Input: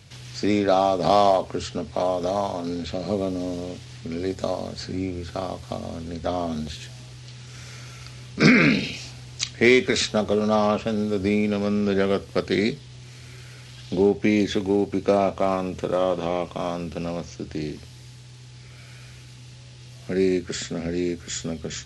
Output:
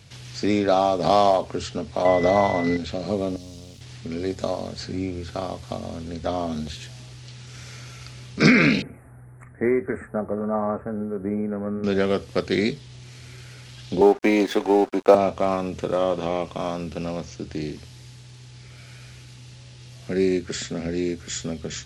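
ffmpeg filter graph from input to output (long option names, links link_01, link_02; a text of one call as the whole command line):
ffmpeg -i in.wav -filter_complex "[0:a]asettb=1/sr,asplit=3[link_01][link_02][link_03];[link_01]atrim=end=2.054[link_04];[link_02]atrim=start=2.05:end=2.77,asetpts=PTS-STARTPTS,afade=type=in:duration=0.004:curve=qsin,afade=type=out:start_time=0.716:duration=0.004:curve=qsin,lowpass=frequency=3200:poles=1,acontrast=65,aeval=exprs='val(0)+0.0282*sin(2*PI*2000*n/s)':channel_layout=same[link_05];[link_03]atrim=start=2.766[link_06];[link_04][link_05]acrossfade=duration=0.004:curve1=hsin:curve2=qsin[link_07];[link_07][link_06]acrossfade=duration=0.004:curve1=qsin:curve2=hsin,asettb=1/sr,asplit=3[link_08][link_09][link_10];[link_08]atrim=end=3.364[link_11];[link_09]atrim=start=3.36:end=3.81,asetpts=PTS-STARTPTS,afade=type=in:duration=0.004:curve=qsin,afade=type=out:start_time=0.446:duration=0.004:curve=qsin,aeval=exprs='sgn(val(0))*max(abs(val(0))-0.00473,0)':channel_layout=same,acrossover=split=140|3000[link_12][link_13][link_14];[link_13]acompressor=threshold=-57dB:ratio=2:attack=3.2:release=140:knee=2.83:detection=peak[link_15];[link_12][link_15][link_14]amix=inputs=3:normalize=0[link_16];[link_10]atrim=start=3.806[link_17];[link_11][link_16]acrossfade=duration=0.004:curve1=hsin:curve2=qsin[link_18];[link_18][link_17]acrossfade=duration=0.004:curve1=qsin:curve2=hsin,asettb=1/sr,asplit=3[link_19][link_20][link_21];[link_19]atrim=end=8.824[link_22];[link_20]atrim=start=8.82:end=11.84,asetpts=PTS-STARTPTS,afade=type=in:duration=0.004:curve=qsin,afade=type=out:start_time=3.016:duration=0.004:curve=qsin,asuperstop=centerf=4400:order=12:qfactor=0.58,flanger=delay=2.2:depth=4.1:regen=-74:speed=1:shape=triangular[link_23];[link_21]atrim=start=11.836[link_24];[link_22][link_23]acrossfade=duration=0.004:curve1=hsin:curve2=qsin[link_25];[link_25][link_24]acrossfade=duration=0.004:curve1=qsin:curve2=hsin,asettb=1/sr,asplit=3[link_26][link_27][link_28];[link_26]atrim=end=14.014[link_29];[link_27]atrim=start=14.01:end=15.15,asetpts=PTS-STARTPTS,afade=type=in:duration=0.004:curve=qsin,afade=type=out:start_time=1.136:duration=0.004:curve=qsin,highpass=frequency=220:width=0.5412,highpass=frequency=220:width=1.3066,equalizer=frequency=850:width=0.9:gain=12.5,aeval=exprs='sgn(val(0))*max(abs(val(0))-0.0168,0)':channel_layout=same[link_30];[link_28]atrim=start=15.146[link_31];[link_29][link_30]acrossfade=duration=0.004:curve1=hsin:curve2=qsin[link_32];[link_32][link_31]acrossfade=duration=0.004:curve1=qsin:curve2=hsin" out.wav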